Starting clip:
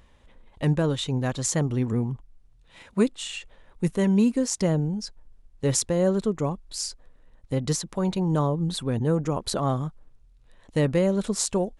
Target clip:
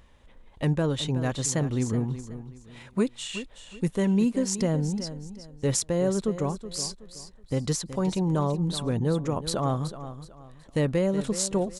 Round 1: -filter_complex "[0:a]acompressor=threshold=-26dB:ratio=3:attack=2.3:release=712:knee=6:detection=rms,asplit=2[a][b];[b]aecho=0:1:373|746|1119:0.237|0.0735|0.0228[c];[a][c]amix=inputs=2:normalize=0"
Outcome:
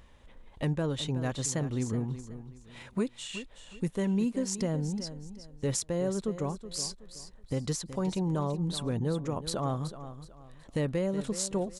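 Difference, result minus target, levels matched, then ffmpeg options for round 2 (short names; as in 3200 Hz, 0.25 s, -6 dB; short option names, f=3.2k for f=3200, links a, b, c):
compressor: peak gain reduction +6 dB
-filter_complex "[0:a]acompressor=threshold=-17dB:ratio=3:attack=2.3:release=712:knee=6:detection=rms,asplit=2[a][b];[b]aecho=0:1:373|746|1119:0.237|0.0735|0.0228[c];[a][c]amix=inputs=2:normalize=0"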